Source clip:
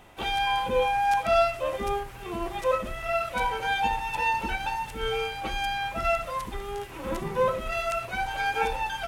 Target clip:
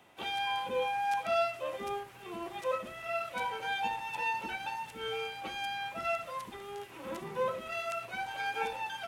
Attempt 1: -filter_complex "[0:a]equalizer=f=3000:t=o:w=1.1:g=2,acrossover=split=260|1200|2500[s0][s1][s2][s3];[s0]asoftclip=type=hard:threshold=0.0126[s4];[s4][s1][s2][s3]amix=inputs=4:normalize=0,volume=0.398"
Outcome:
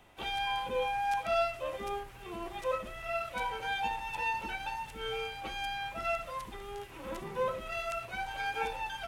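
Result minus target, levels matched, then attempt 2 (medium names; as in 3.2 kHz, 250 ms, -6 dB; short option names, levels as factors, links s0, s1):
125 Hz band +3.5 dB
-filter_complex "[0:a]highpass=140,equalizer=f=3000:t=o:w=1.1:g=2,acrossover=split=260|1200|2500[s0][s1][s2][s3];[s0]asoftclip=type=hard:threshold=0.0126[s4];[s4][s1][s2][s3]amix=inputs=4:normalize=0,volume=0.398"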